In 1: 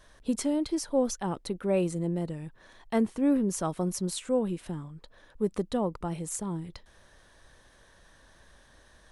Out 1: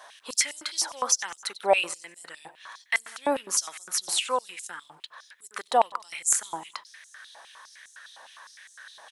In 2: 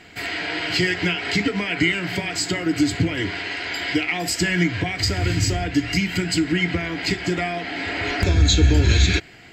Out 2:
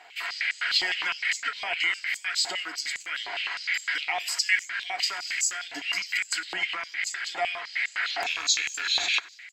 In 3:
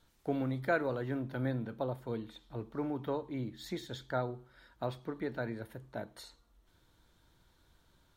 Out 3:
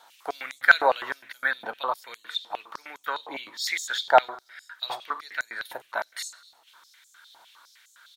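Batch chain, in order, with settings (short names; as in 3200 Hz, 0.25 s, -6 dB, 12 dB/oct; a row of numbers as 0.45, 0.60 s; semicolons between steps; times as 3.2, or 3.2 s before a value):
rattling part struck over -17 dBFS, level -17 dBFS; feedback echo 94 ms, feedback 57%, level -21 dB; stepped high-pass 9.8 Hz 800–7000 Hz; match loudness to -27 LUFS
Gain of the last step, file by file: +8.5, -6.5, +14.0 dB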